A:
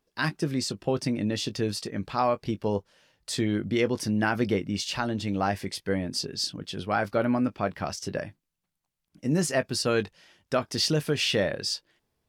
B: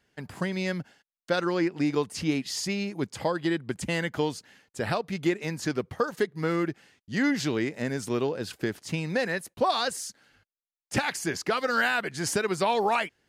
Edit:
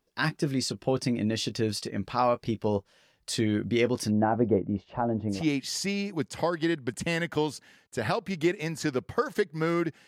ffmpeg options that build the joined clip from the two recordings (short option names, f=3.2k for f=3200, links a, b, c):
-filter_complex "[0:a]asplit=3[a][b][c];[a]afade=t=out:st=4.1:d=0.02[d];[b]lowpass=f=760:t=q:w=1.7,afade=t=in:st=4.1:d=0.02,afade=t=out:st=5.44:d=0.02[e];[c]afade=t=in:st=5.44:d=0.02[f];[d][e][f]amix=inputs=3:normalize=0,apad=whole_dur=10.07,atrim=end=10.07,atrim=end=5.44,asetpts=PTS-STARTPTS[g];[1:a]atrim=start=2.1:end=6.89,asetpts=PTS-STARTPTS[h];[g][h]acrossfade=d=0.16:c1=tri:c2=tri"